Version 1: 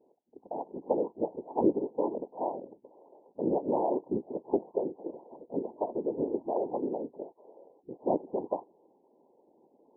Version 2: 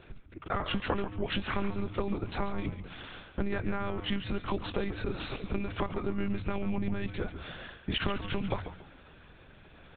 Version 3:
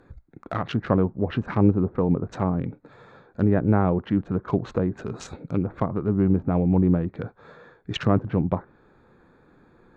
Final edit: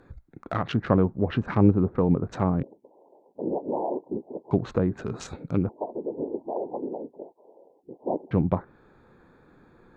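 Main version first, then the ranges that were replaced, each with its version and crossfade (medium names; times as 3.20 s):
3
2.63–4.51 s: from 1
5.69–8.31 s: from 1
not used: 2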